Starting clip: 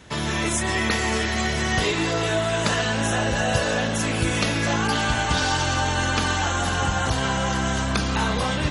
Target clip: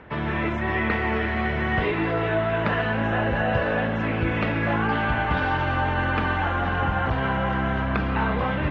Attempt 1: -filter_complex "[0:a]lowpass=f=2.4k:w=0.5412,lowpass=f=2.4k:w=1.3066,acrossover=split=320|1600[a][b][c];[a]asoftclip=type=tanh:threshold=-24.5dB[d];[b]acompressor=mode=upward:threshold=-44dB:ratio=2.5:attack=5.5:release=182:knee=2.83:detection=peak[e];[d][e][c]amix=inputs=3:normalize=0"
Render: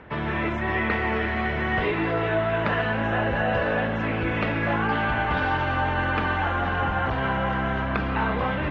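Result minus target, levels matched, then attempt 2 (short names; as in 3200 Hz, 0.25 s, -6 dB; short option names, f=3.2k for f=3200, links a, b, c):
soft clip: distortion +13 dB
-filter_complex "[0:a]lowpass=f=2.4k:w=0.5412,lowpass=f=2.4k:w=1.3066,acrossover=split=320|1600[a][b][c];[a]asoftclip=type=tanh:threshold=-14dB[d];[b]acompressor=mode=upward:threshold=-44dB:ratio=2.5:attack=5.5:release=182:knee=2.83:detection=peak[e];[d][e][c]amix=inputs=3:normalize=0"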